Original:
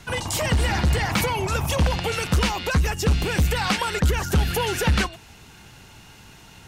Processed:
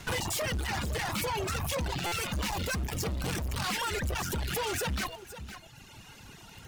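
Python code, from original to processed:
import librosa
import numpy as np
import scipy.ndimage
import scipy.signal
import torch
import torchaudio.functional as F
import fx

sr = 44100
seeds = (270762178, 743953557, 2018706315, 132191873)

p1 = fx.quant_dither(x, sr, seeds[0], bits=6, dither='none')
p2 = x + (p1 * 10.0 ** (-5.0 / 20.0))
p3 = fx.bass_treble(p2, sr, bass_db=13, treble_db=5, at=(2.5, 3.64))
p4 = fx.clip_asym(p3, sr, top_db=-41.5, bottom_db=-24.0)
p5 = p4 + 10.0 ** (-12.0 / 20.0) * np.pad(p4, (int(511 * sr / 1000.0), 0))[:len(p4)]
p6 = fx.rev_schroeder(p5, sr, rt60_s=3.2, comb_ms=26, drr_db=17.5)
p7 = fx.dereverb_blind(p6, sr, rt60_s=1.4)
y = fx.buffer_glitch(p7, sr, at_s=(2.06,), block=256, repeats=9)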